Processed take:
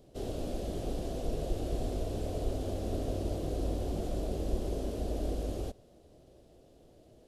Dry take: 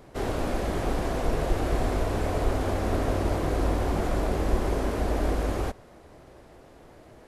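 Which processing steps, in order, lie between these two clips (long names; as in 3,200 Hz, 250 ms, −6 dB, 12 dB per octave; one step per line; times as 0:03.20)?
flat-topped bell 1,400 Hz −13.5 dB
level −7.5 dB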